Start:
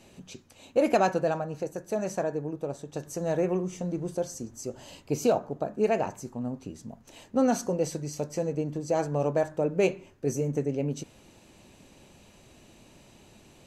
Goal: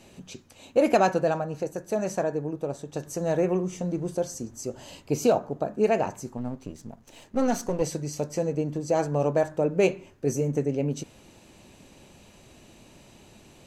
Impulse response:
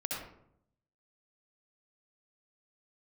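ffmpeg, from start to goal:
-filter_complex "[0:a]asettb=1/sr,asplit=3[s0][s1][s2];[s0]atrim=end=6.374[s3];[s1]atrim=start=6.37:end=7.82,asetpts=PTS-STARTPTS,afade=t=in:d=0.004:c=qsin,afade=t=out:st=1.446:d=0.004:c=qsin,aeval=exprs='if(lt(val(0),0),0.447*val(0),val(0))':c=same[s4];[s2]atrim=start=7.816[s5];[s3][s4]acrossfade=d=0.004:c1=hsin:c2=qsin[s6];[s6][s5]acrossfade=d=0.004:c1=qsin:c2=hsin,volume=1.33"

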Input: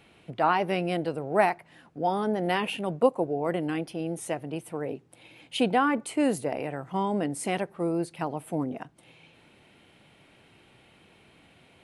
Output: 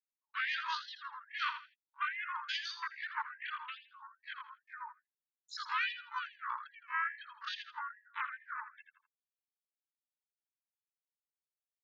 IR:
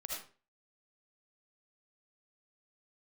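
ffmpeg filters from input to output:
-filter_complex "[0:a]aeval=exprs='val(0)+0.00631*(sin(2*PI*50*n/s)+sin(2*PI*2*50*n/s)/2+sin(2*PI*3*50*n/s)/3+sin(2*PI*4*50*n/s)/4+sin(2*PI*5*50*n/s)/5)':c=same,aeval=exprs='0.398*(cos(1*acos(clip(val(0)/0.398,-1,1)))-cos(1*PI/2))+0.0562*(cos(6*acos(clip(val(0)/0.398,-1,1)))-cos(6*PI/2))':c=same,highpass=630,lowpass=3600,aemphasis=mode=reproduction:type=75fm,afftfilt=real='re*gte(hypot(re,im),0.0501)':imag='im*gte(hypot(re,im),0.0501)':win_size=1024:overlap=0.75,agate=range=0.224:threshold=0.00316:ratio=16:detection=peak,asplit=4[s0][s1][s2][s3];[s1]asetrate=35002,aresample=44100,atempo=1.25992,volume=0.562[s4];[s2]asetrate=52444,aresample=44100,atempo=0.840896,volume=0.178[s5];[s3]asetrate=58866,aresample=44100,atempo=0.749154,volume=0.2[s6];[s0][s4][s5][s6]amix=inputs=4:normalize=0,alimiter=limit=0.106:level=0:latency=1:release=24,asetrate=74167,aresample=44100,atempo=0.594604,asplit=2[s7][s8];[s8]aecho=0:1:82|164|246:0.316|0.0917|0.0266[s9];[s7][s9]amix=inputs=2:normalize=0,afftfilt=real='re*gte(b*sr/1024,850*pow(1700/850,0.5+0.5*sin(2*PI*2.4*pts/sr)))':imag='im*gte(b*sr/1024,850*pow(1700/850,0.5+0.5*sin(2*PI*2.4*pts/sr)))':win_size=1024:overlap=0.75,volume=0.631"

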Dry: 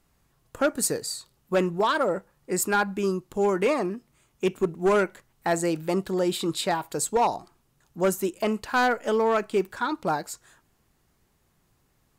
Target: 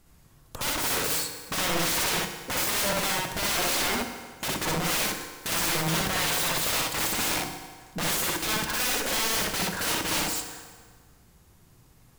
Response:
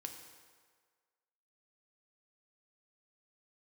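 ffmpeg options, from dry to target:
-filter_complex "[0:a]bass=f=250:g=5,treble=f=4000:g=3,aeval=exprs='(mod(26.6*val(0)+1,2)-1)/26.6':c=same,asplit=2[s0][s1];[1:a]atrim=start_sample=2205,adelay=62[s2];[s1][s2]afir=irnorm=-1:irlink=0,volume=1.68[s3];[s0][s3]amix=inputs=2:normalize=0,volume=1.5"

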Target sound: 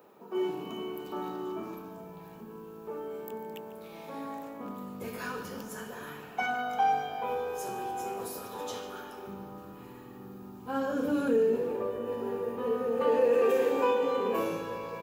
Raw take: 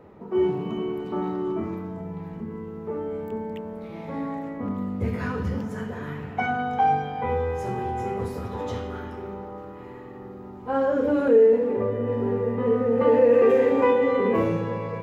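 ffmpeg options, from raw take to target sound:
-filter_complex "[0:a]highpass=140,aemphasis=mode=production:type=riaa,bandreject=f=2000:w=5.4,asplit=3[s0][s1][s2];[s0]afade=t=out:st=9.26:d=0.02[s3];[s1]asubboost=boost=7.5:cutoff=190,afade=t=in:st=9.26:d=0.02,afade=t=out:st=11.55:d=0.02[s4];[s2]afade=t=in:st=11.55:d=0.02[s5];[s3][s4][s5]amix=inputs=3:normalize=0,asplit=5[s6][s7][s8][s9][s10];[s7]adelay=145,afreqshift=-54,volume=0.158[s11];[s8]adelay=290,afreqshift=-108,volume=0.0741[s12];[s9]adelay=435,afreqshift=-162,volume=0.0351[s13];[s10]adelay=580,afreqshift=-216,volume=0.0164[s14];[s6][s11][s12][s13][s14]amix=inputs=5:normalize=0,volume=0.596"

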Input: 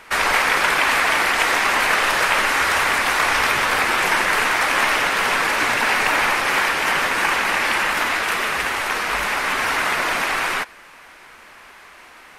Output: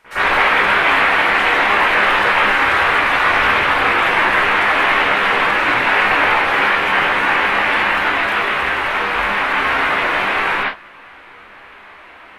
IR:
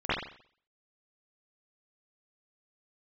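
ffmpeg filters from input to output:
-filter_complex "[0:a]asettb=1/sr,asplit=3[s0][s1][s2];[s0]atrim=end=5.424[s3];[s1]atrim=start=5.42:end=6.39,asetpts=PTS-STARTPTS,afade=t=in:d=0.004:c=qsin,afade=t=out:st=0.966:d=0.004:c=qsin,acrusher=bits=7:mix=0:aa=0.5[s4];[s2]atrim=start=6.386[s5];[s3][s4]acrossfade=d=0.004:c1=hsin:c2=qsin[s6];[s6][s5]acrossfade=d=0.004:c1=qsin:c2=hsin[s7];[1:a]atrim=start_sample=2205,afade=t=out:st=0.17:d=0.01,atrim=end_sample=7938[s8];[s7][s8]afir=irnorm=-1:irlink=0,volume=0.422"

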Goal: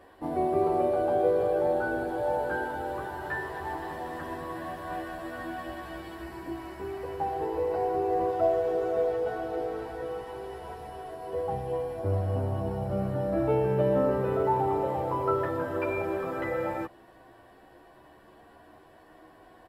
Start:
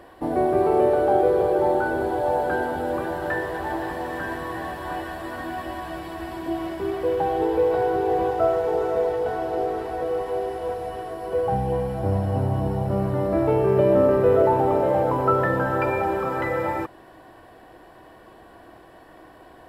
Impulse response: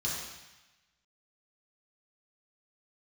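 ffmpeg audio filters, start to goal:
-filter_complex "[0:a]asettb=1/sr,asplit=3[s0][s1][s2];[s0]atrim=end=6.224[s3];[s1]atrim=start=6.22:end=8.29,asetpts=PTS-STARTPTS,afade=t=in:d=0.004:c=qsin,afade=t=out:st=2.066:d=0.004:c=qsin,equalizer=f=3400:w=4.7:g=-9[s4];[s2]atrim=start=8.286[s5];[s3][s4]acrossfade=d=0.004:c1=hsin:c2=qsin[s6];[s6][s5]acrossfade=d=0.004:c1=qsin:c2=hsin,asplit=2[s7][s8];[s8]adelay=10.7,afreqshift=0.27[s9];[s7][s9]amix=inputs=2:normalize=1,volume=0.668"

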